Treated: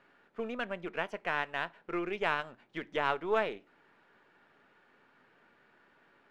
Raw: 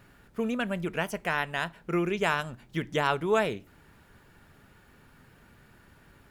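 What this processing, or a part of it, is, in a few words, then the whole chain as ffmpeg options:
crystal radio: -af "highpass=350,lowpass=3000,aeval=exprs='if(lt(val(0),0),0.708*val(0),val(0))':channel_layout=same,volume=-2.5dB"

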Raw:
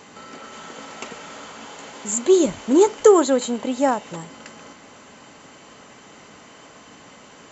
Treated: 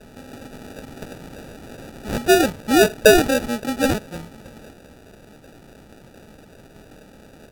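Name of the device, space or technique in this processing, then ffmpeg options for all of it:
crushed at another speed: -af "asetrate=55125,aresample=44100,acrusher=samples=33:mix=1:aa=0.000001,asetrate=35280,aresample=44100"

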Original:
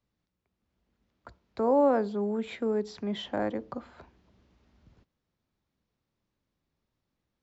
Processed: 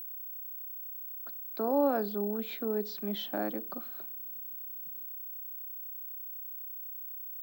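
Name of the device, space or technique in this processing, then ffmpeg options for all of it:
old television with a line whistle: -af "highpass=frequency=180:width=0.5412,highpass=frequency=180:width=1.3066,equalizer=frequency=240:width_type=q:width=4:gain=-5,equalizer=frequency=500:width_type=q:width=4:gain=-8,equalizer=frequency=970:width_type=q:width=4:gain=-9,equalizer=frequency=2000:width_type=q:width=4:gain=-8,equalizer=frequency=4300:width_type=q:width=4:gain=4,lowpass=frequency=6500:width=0.5412,lowpass=frequency=6500:width=1.3066,aeval=exprs='val(0)+0.0112*sin(2*PI*15734*n/s)':channel_layout=same"

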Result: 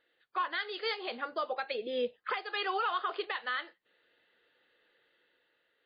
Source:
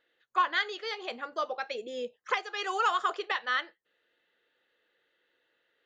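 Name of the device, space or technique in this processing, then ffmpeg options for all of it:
low-bitrate web radio: -filter_complex "[0:a]asplit=3[link_01][link_02][link_03];[link_01]afade=type=out:start_time=1.73:duration=0.02[link_04];[link_02]equalizer=frequency=1400:width=2.1:gain=6,afade=type=in:start_time=1.73:duration=0.02,afade=type=out:start_time=2.3:duration=0.02[link_05];[link_03]afade=type=in:start_time=2.3:duration=0.02[link_06];[link_04][link_05][link_06]amix=inputs=3:normalize=0,dynaudnorm=framelen=110:gausssize=13:maxgain=4dB,alimiter=limit=-23dB:level=0:latency=1:release=229" -ar 11025 -c:a libmp3lame -b:a 24k

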